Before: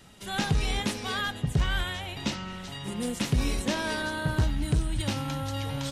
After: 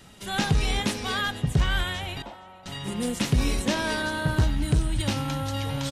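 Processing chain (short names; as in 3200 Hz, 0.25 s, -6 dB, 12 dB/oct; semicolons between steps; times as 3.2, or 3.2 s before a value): 2.22–2.66 band-pass 750 Hz, Q 3.1; echo 0.464 s -23.5 dB; gain +3 dB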